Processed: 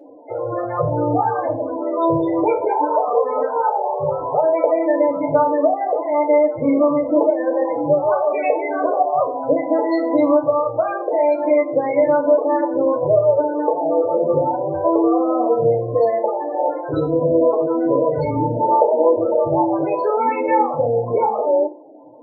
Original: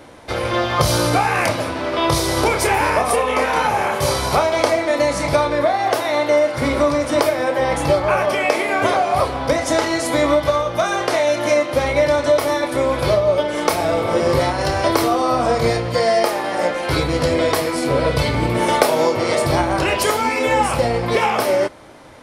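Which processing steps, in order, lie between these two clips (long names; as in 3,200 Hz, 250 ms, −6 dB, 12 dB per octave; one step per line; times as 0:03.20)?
Chebyshev band-pass filter 110–7,200 Hz, order 2
parametric band 560 Hz +9 dB 2.2 octaves
spectral peaks only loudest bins 16
feedback delay network reverb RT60 0.32 s, low-frequency decay 1.5×, high-frequency decay 0.95×, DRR 2.5 dB
level −8 dB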